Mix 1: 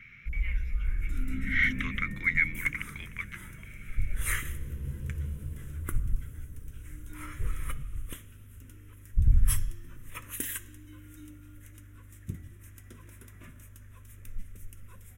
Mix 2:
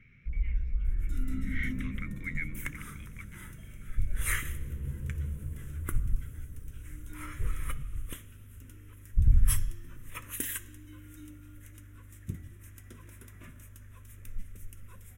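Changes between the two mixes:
speech -12.0 dB; first sound: add air absorption 390 m

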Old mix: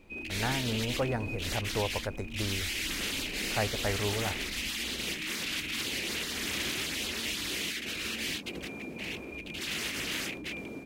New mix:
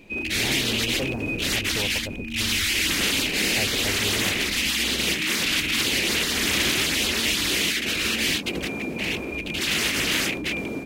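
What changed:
speech: add Gaussian blur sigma 8.4 samples; background +11.0 dB

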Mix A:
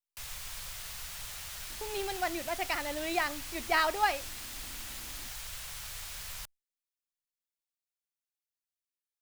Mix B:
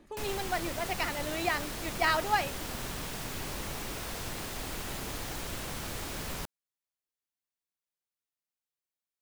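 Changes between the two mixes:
speech: entry -1.70 s; background: remove passive tone stack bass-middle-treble 10-0-10

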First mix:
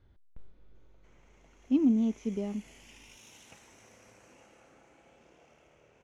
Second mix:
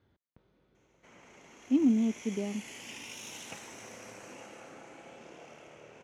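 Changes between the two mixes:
background +10.5 dB; master: add HPF 130 Hz 12 dB/oct

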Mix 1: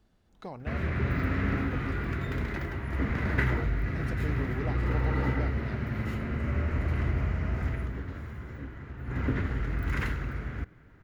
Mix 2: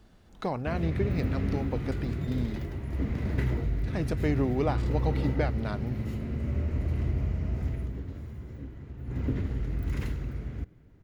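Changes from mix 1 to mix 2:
speech +10.0 dB; background: add bell 1500 Hz -14 dB 1.6 oct

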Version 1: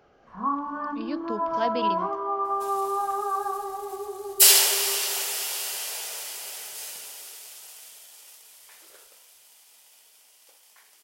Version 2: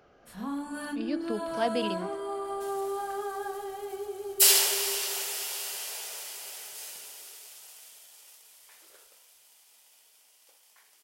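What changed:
first sound: remove synth low-pass 1100 Hz, resonance Q 8.8; second sound -4.5 dB

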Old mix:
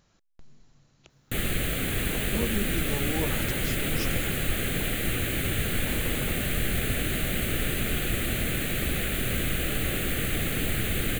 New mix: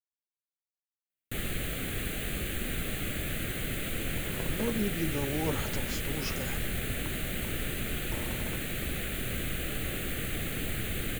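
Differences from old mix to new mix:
speech: entry +2.25 s; background -6.0 dB

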